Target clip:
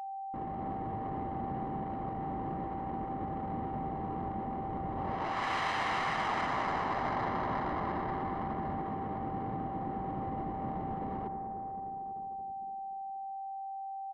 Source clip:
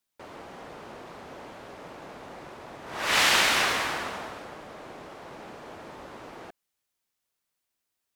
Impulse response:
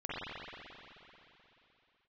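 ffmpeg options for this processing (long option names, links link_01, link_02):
-filter_complex "[0:a]flanger=delay=3.3:depth=7.4:regen=-83:speed=0.35:shape=triangular,asplit=2[link_01][link_02];[1:a]atrim=start_sample=2205,lowpass=4500[link_03];[link_02][link_03]afir=irnorm=-1:irlink=0,volume=-7dB[link_04];[link_01][link_04]amix=inputs=2:normalize=0,asetrate=25442,aresample=44100,adynamicsmooth=sensitivity=5.5:basefreq=1200,lowpass=5700,areverse,acompressor=threshold=-37dB:ratio=16,areverse,anlmdn=0.0000631,aecho=1:1:1:0.47,aeval=exprs='val(0)+0.00631*sin(2*PI*780*n/s)':channel_layout=same,volume=6.5dB"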